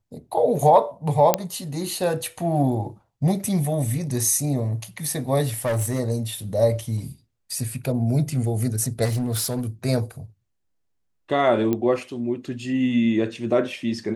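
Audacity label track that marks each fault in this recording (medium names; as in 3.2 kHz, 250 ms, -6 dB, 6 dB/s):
1.340000	1.340000	pop -1 dBFS
5.540000	6.000000	clipped -20 dBFS
9.040000	9.620000	clipped -20.5 dBFS
11.730000	11.730000	pop -12 dBFS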